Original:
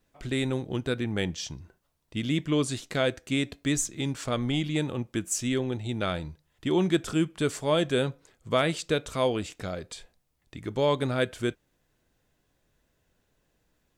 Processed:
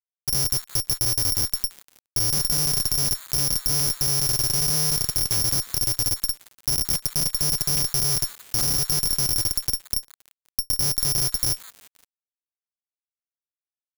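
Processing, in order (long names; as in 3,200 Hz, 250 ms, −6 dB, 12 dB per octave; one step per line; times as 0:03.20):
downward expander −49 dBFS
drawn EQ curve 140 Hz 0 dB, 220 Hz −25 dB, 680 Hz −20 dB, 1,000 Hz −13 dB, 3,300 Hz +4 dB, 6,500 Hz −4 dB, 13,000 Hz +1 dB
feedback delay network reverb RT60 0.84 s, low-frequency decay 1.6×, high-frequency decay 0.6×, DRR −8 dB
dynamic equaliser 1,800 Hz, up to −7 dB, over −37 dBFS, Q 1.2
downward compressor 2 to 1, threshold −30 dBFS, peak gain reduction 8.5 dB
comparator with hysteresis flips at −24.5 dBFS
on a send: echo through a band-pass that steps 174 ms, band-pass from 1,600 Hz, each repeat 1.4 octaves, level −4.5 dB
on the sum: bad sample-rate conversion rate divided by 8×, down none, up zero stuff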